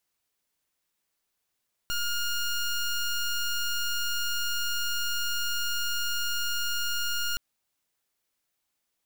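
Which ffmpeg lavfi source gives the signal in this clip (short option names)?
-f lavfi -i "aevalsrc='0.0376*(2*lt(mod(1420*t,1),0.15)-1)':d=5.47:s=44100"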